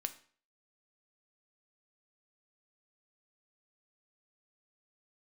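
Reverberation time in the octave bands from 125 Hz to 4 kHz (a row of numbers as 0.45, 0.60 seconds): 0.45, 0.45, 0.45, 0.45, 0.45, 0.40 seconds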